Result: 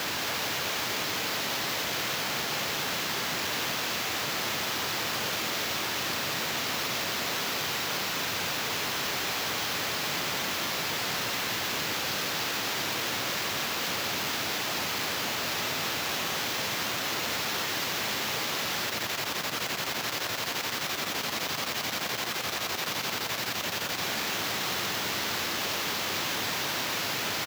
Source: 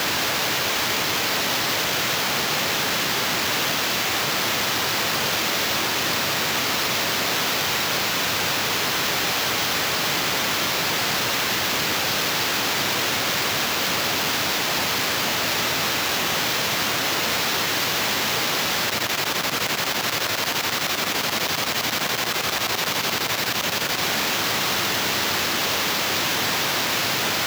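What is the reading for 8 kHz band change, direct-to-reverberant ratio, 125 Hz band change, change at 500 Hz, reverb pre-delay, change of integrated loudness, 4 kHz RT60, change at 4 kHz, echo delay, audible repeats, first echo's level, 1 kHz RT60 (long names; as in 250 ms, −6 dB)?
−8.0 dB, no reverb audible, −8.0 dB, −8.0 dB, no reverb audible, −8.0 dB, no reverb audible, −8.0 dB, 266 ms, 1, −8.5 dB, no reverb audible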